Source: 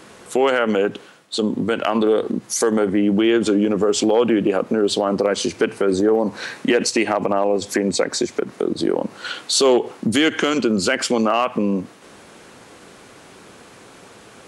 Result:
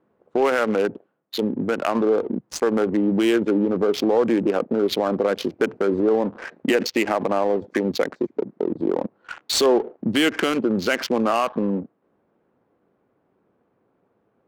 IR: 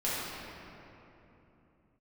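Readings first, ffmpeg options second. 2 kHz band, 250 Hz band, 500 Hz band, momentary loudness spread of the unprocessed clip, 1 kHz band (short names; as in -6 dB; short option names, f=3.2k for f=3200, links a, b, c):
-3.0 dB, -2.5 dB, -2.5 dB, 8 LU, -2.5 dB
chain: -af "lowshelf=f=74:g=-9.5,afwtdn=0.0355,adynamicsmooth=sensitivity=3:basefreq=920,volume=-2dB"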